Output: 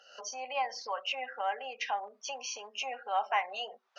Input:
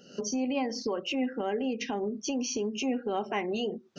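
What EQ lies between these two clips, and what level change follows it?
inverse Chebyshev high-pass filter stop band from 360 Hz, stop band 40 dB
low-pass filter 1,500 Hz 6 dB per octave
+7.0 dB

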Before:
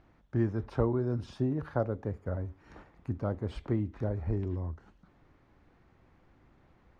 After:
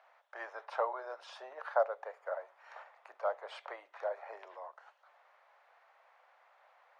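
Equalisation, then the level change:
Butterworth high-pass 580 Hz 48 dB per octave
high-shelf EQ 4,500 Hz −11 dB
+6.0 dB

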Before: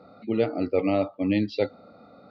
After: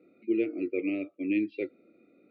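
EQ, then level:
pair of resonant band-passes 920 Hz, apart 2.8 octaves
high-frequency loss of the air 270 metres
+5.0 dB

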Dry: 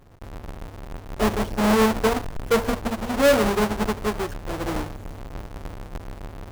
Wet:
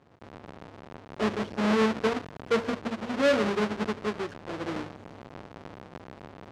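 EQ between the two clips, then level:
band-pass filter 150–4,700 Hz
dynamic equaliser 790 Hz, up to −5 dB, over −36 dBFS, Q 1.7
−4.0 dB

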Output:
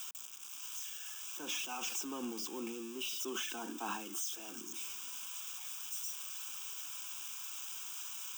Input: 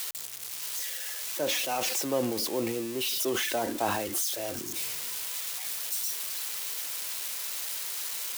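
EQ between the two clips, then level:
Butterworth high-pass 190 Hz 36 dB per octave
phaser with its sweep stopped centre 2,900 Hz, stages 8
−6.5 dB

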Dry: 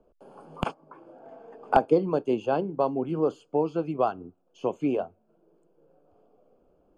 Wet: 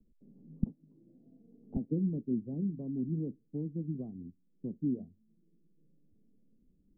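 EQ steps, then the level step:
transistor ladder low-pass 260 Hz, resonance 50%
spectral tilt −2 dB per octave
0.0 dB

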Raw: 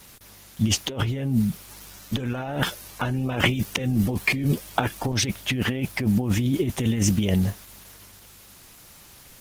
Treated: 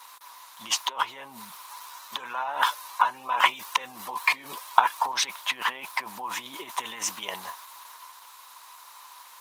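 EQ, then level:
high-pass with resonance 1,000 Hz, resonance Q 11
parametric band 3,900 Hz +5.5 dB 0.22 octaves
−2.5 dB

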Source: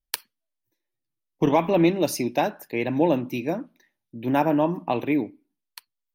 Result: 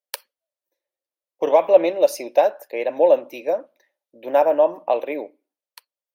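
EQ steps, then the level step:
high-pass with resonance 550 Hz, resonance Q 5.4
−2.5 dB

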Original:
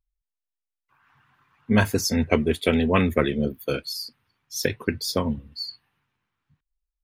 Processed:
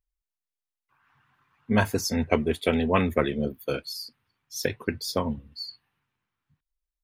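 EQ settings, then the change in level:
dynamic equaliser 810 Hz, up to +5 dB, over −36 dBFS, Q 1.2
−4.0 dB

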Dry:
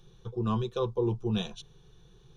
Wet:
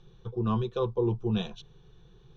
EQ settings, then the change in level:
high-frequency loss of the air 140 metres
+1.5 dB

